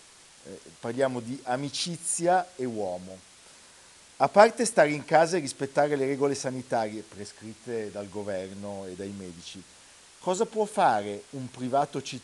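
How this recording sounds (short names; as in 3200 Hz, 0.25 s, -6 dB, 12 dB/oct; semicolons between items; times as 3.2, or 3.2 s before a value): a quantiser's noise floor 8-bit, dither triangular; AAC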